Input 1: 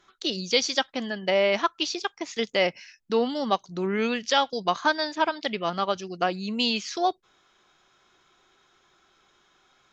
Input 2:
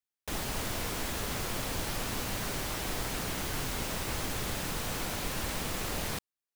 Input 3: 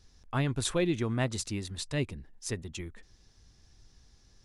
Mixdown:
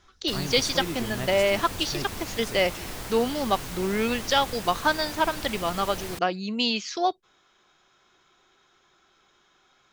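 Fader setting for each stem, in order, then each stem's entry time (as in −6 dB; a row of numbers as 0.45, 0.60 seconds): 0.0, −2.0, −4.5 decibels; 0.00, 0.00, 0.00 seconds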